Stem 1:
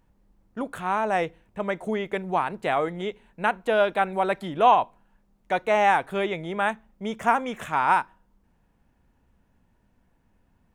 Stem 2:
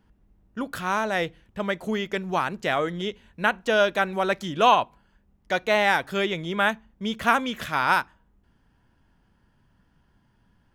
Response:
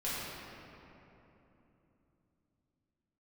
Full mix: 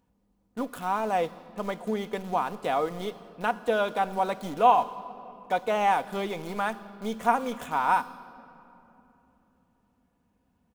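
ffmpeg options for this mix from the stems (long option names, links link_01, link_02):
-filter_complex "[0:a]highpass=72,volume=-3.5dB,asplit=2[link_01][link_02];[1:a]firequalizer=gain_entry='entry(1100,0);entry(2000,-8);entry(9200,6)':delay=0.05:min_phase=1,aeval=exprs='val(0)*gte(abs(val(0)),0.0398)':channel_layout=same,volume=-1,volume=-9dB,asplit=2[link_03][link_04];[link_04]volume=-14dB[link_05];[link_02]apad=whole_len=478169[link_06];[link_03][link_06]sidechaincompress=threshold=-34dB:ratio=8:attack=16:release=126[link_07];[2:a]atrim=start_sample=2205[link_08];[link_05][link_08]afir=irnorm=-1:irlink=0[link_09];[link_01][link_07][link_09]amix=inputs=3:normalize=0,equalizer=frequency=1800:width=1.7:gain=-5,aecho=1:1:4.1:0.38"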